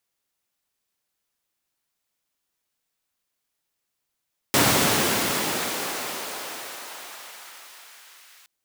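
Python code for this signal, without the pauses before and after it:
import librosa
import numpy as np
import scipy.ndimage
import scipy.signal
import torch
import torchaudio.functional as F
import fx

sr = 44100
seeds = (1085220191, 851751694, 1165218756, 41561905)

y = fx.riser_noise(sr, seeds[0], length_s=3.92, colour='pink', kind='highpass', start_hz=140.0, end_hz=1700.0, q=0.83, swell_db=-32, law='exponential')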